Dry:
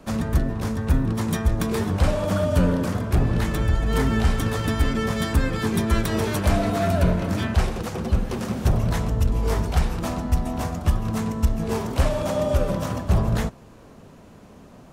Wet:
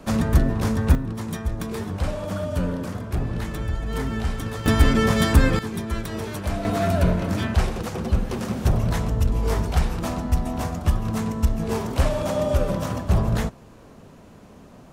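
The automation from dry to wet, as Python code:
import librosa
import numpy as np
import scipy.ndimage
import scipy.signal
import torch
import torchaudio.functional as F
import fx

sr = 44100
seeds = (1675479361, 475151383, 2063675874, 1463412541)

y = fx.gain(x, sr, db=fx.steps((0.0, 3.5), (0.95, -5.5), (4.66, 5.0), (5.59, -6.5), (6.65, 0.0)))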